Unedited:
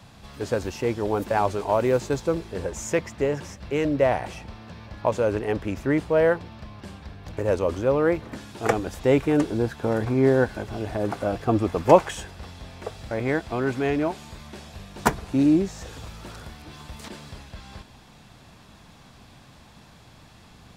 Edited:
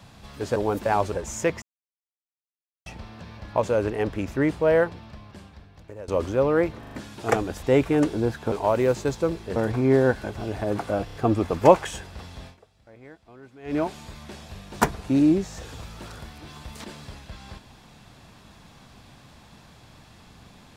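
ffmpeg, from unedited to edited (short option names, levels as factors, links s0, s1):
-filter_complex "[0:a]asplit=16[s0][s1][s2][s3][s4][s5][s6][s7][s8][s9][s10][s11][s12][s13][s14][s15];[s0]atrim=end=0.562[s16];[s1]atrim=start=1.008:end=1.572[s17];[s2]atrim=start=2.608:end=3.11,asetpts=PTS-STARTPTS,afade=t=out:st=0.498:d=0.004:c=hsin[s18];[s3]atrim=start=3.11:end=4.35,asetpts=PTS-STARTPTS,volume=0[s19];[s4]atrim=start=4.35:end=7.57,asetpts=PTS-STARTPTS,afade=t=in:d=0.004:c=hsin,afade=t=out:st=1.94:d=1.28:silence=0.105925[s20];[s5]atrim=start=7.57:end=8.332,asetpts=PTS-STARTPTS,afade=t=in:d=0.004:c=hsin:silence=0.105925[s21];[s6]atrim=start=8.288:end=8.332[s22];[s7]atrim=start=8.288:end=8.332[s23];[s8]atrim=start=8.288:end=9.892[s24];[s9]atrim=start=1.568:end=2.612[s25];[s10]atrim=start=9.888:end=11.412[s26];[s11]atrim=start=11.378:end=11.412[s27];[s12]atrim=start=11.378:end=11.412[s28];[s13]atrim=start=11.378:end=12.85,asetpts=PTS-STARTPTS,afade=t=out:st=1.332:d=0.14:c=qua:silence=0.0794328[s29];[s14]atrim=start=12.85:end=13.85,asetpts=PTS-STARTPTS,volume=0.0794[s30];[s15]atrim=start=13.85,asetpts=PTS-STARTPTS,afade=t=in:d=0.14:c=qua:silence=0.0794328[s31];[s16][s17]acrossfade=d=0.004:c1=hsin:c2=hsin[s32];[s18][s19][s20][s21]concat=n=4:v=0:a=1[s33];[s32][s33]acrossfade=d=0.004:c1=hsin:c2=hsin[s34];[s34][s22]acrossfade=d=0.004:c1=hsin:c2=hsin[s35];[s35][s23]acrossfade=d=0.004:c1=hsin:c2=hsin[s36];[s36][s24]acrossfade=d=0.004:c1=hsin:c2=hsin[s37];[s37][s25]acrossfade=d=0.004:c1=hsin:c2=hsin[s38];[s38][s26]acrossfade=d=0.004:c1=hsin:c2=hsin[s39];[s39][s27]acrossfade=d=0.004:c1=hsin:c2=hsin[s40];[s40][s28]acrossfade=d=0.004:c1=hsin:c2=hsin[s41];[s29][s30][s31]concat=n=3:v=0:a=1[s42];[s41][s42]acrossfade=d=0.004:c1=hsin:c2=hsin"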